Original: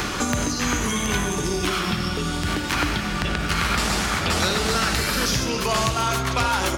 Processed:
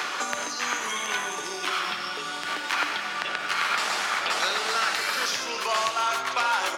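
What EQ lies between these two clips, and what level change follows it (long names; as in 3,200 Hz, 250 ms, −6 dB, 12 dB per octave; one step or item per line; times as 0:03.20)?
high-pass filter 730 Hz 12 dB per octave
low-pass filter 3,700 Hz 6 dB per octave
0.0 dB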